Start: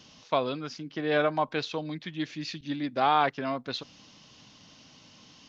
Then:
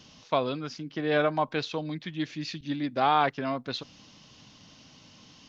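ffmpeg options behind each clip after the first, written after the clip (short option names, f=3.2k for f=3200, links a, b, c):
-af "lowshelf=f=170:g=4.5"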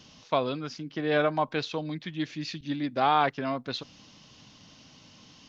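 -af anull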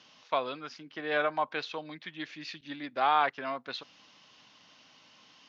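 -af "bandpass=f=1.6k:t=q:w=0.6:csg=0"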